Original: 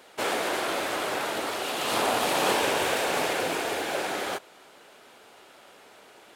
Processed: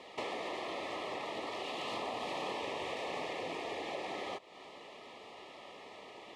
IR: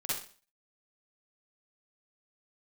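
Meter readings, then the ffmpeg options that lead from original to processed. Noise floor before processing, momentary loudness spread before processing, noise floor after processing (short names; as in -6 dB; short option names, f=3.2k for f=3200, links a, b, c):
-53 dBFS, 6 LU, -53 dBFS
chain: -af "lowpass=4.4k,acompressor=threshold=-41dB:ratio=4,asuperstop=centerf=1500:order=8:qfactor=3.4,volume=2dB"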